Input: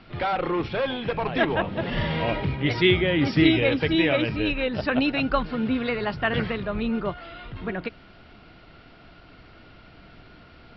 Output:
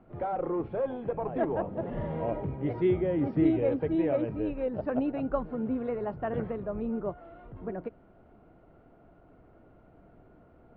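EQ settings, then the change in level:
Chebyshev low-pass filter 580 Hz, order 2
low-shelf EQ 400 Hz −8 dB
0.0 dB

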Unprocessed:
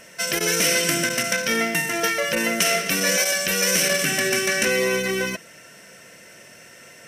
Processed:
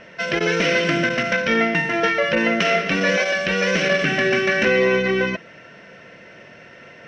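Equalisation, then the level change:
low-pass filter 4,900 Hz 12 dB per octave
high-frequency loss of the air 220 metres
+5.5 dB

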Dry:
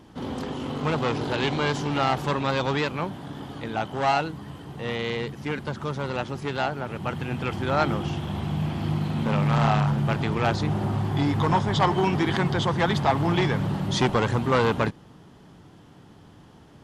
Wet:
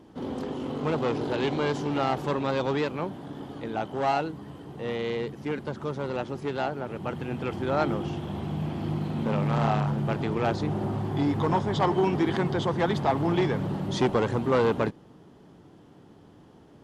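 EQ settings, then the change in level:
parametric band 390 Hz +8 dB 2.1 octaves
−7.0 dB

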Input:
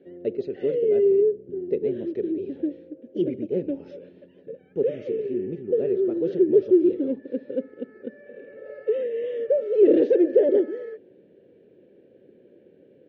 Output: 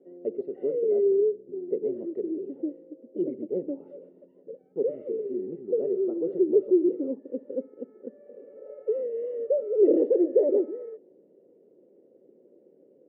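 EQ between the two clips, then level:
Savitzky-Golay smoothing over 65 samples
high-pass filter 250 Hz 12 dB per octave
high-frequency loss of the air 180 metres
−2.5 dB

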